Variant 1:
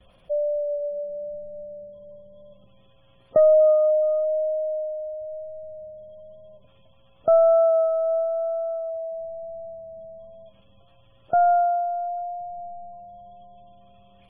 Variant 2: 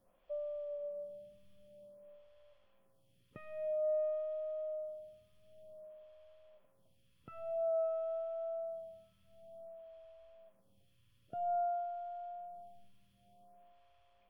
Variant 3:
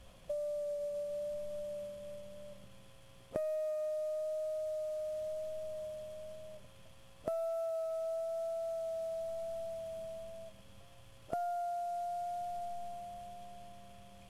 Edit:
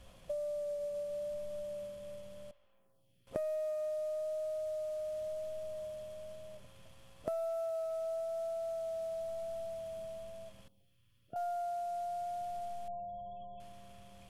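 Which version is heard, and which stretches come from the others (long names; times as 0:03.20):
3
0:02.51–0:03.27: punch in from 2
0:10.68–0:11.36: punch in from 2
0:12.88–0:13.60: punch in from 1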